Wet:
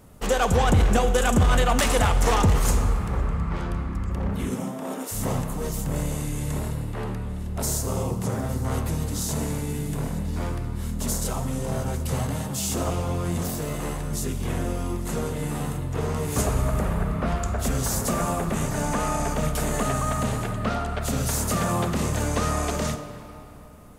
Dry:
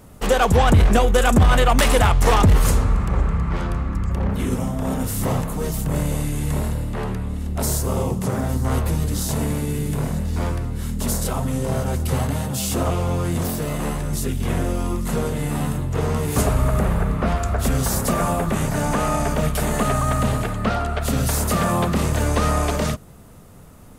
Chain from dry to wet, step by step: reverberation RT60 3.2 s, pre-delay 41 ms, DRR 9 dB; dynamic bell 6.7 kHz, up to +5 dB, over -43 dBFS, Q 1.8; 4.49–5.11 s: high-pass 110 Hz -> 330 Hz 24 dB/octave; trim -5 dB

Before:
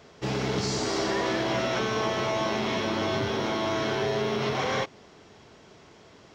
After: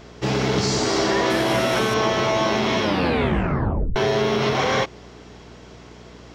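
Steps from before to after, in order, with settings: 1.30–1.94 s: CVSD coder 64 kbps; 2.81 s: tape stop 1.15 s; mains buzz 60 Hz, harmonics 8, -53 dBFS -3 dB/octave; trim +7 dB

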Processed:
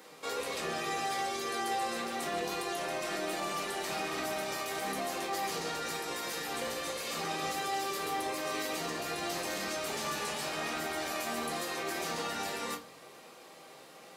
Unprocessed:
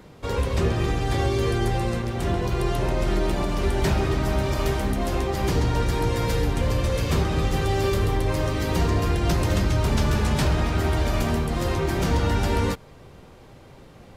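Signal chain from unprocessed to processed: high-pass 480 Hz 12 dB/octave; treble shelf 3.8 kHz +9.5 dB; peak limiter -26 dBFS, peak gain reduction 14.5 dB; reverberation RT60 0.30 s, pre-delay 4 ms, DRR -2.5 dB; trim -5.5 dB

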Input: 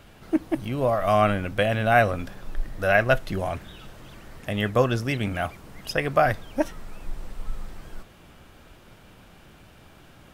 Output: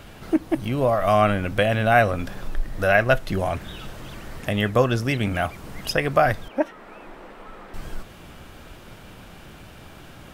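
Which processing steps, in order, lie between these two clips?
6.48–7.74 s: three-band isolator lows -24 dB, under 230 Hz, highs -16 dB, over 2.9 kHz; in parallel at +2 dB: compression, threshold -32 dBFS, peak gain reduction 17.5 dB

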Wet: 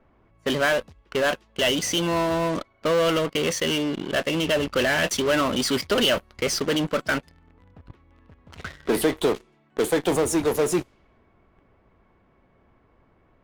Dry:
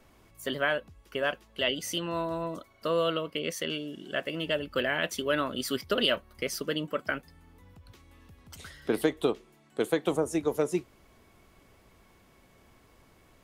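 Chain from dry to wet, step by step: level-controlled noise filter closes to 1.6 kHz, open at -25.5 dBFS; in parallel at -11 dB: fuzz box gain 40 dB, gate -48 dBFS

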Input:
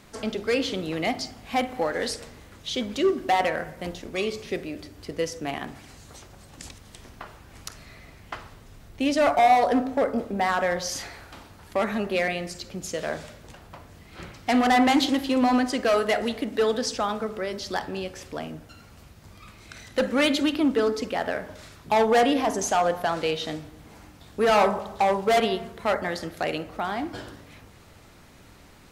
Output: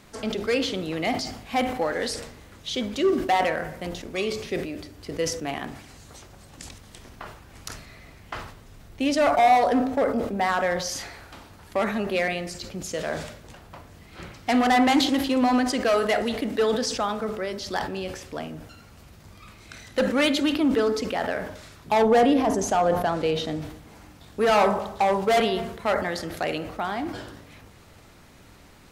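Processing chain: 22.02–23.62 s: tilt shelf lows +4.5 dB, about 790 Hz; decay stretcher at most 71 dB/s

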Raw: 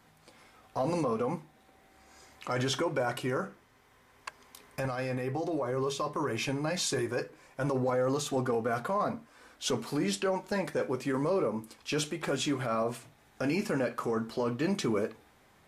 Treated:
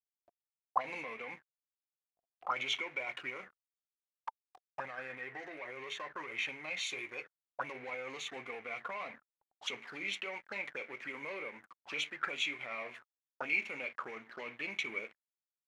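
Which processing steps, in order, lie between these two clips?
treble shelf 2.6 kHz +3.5 dB; touch-sensitive flanger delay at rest 3.7 ms, full sweep at -29.5 dBFS; hysteresis with a dead band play -39.5 dBFS; auto-wah 680–2200 Hz, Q 10, up, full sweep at -29.5 dBFS; trim +17.5 dB

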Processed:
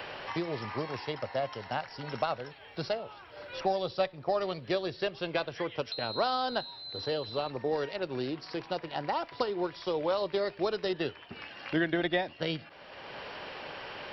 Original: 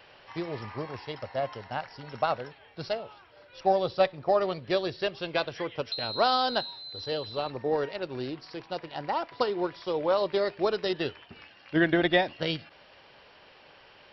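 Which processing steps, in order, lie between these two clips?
three bands compressed up and down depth 70%; trim -3 dB

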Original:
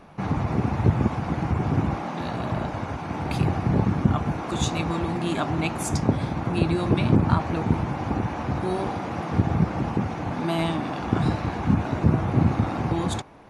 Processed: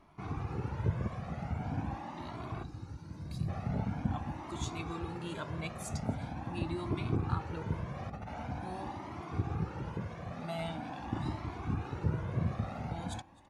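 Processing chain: 2.63–3.49 s: time-frequency box 350–3700 Hz -12 dB; 7.95–8.47 s: compressor with a negative ratio -27 dBFS, ratio -0.5; on a send: delay 259 ms -24 dB; on the sum: Shepard-style flanger rising 0.44 Hz; trim -8.5 dB

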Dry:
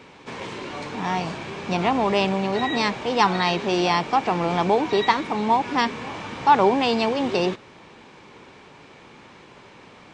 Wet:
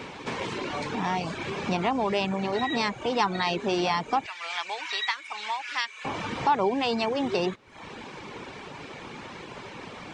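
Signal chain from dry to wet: 4.26–6.05 s: Chebyshev high-pass 1.9 kHz, order 2; reverb removal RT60 0.67 s; compression 2:1, threshold -41 dBFS, peak gain reduction 16.5 dB; trim +8 dB

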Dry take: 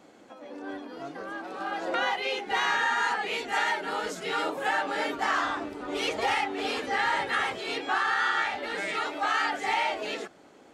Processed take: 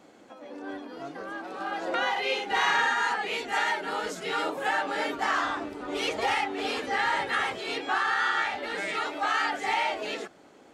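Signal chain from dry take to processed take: 2.11–2.93 s: doubling 49 ms -3 dB

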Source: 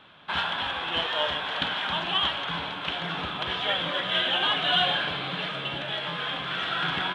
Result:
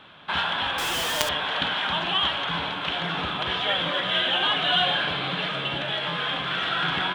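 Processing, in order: in parallel at -2 dB: peak limiter -23 dBFS, peak gain reduction 11 dB; 0.78–1.29 s: on the sum: companded quantiser 2-bit; trim -1 dB

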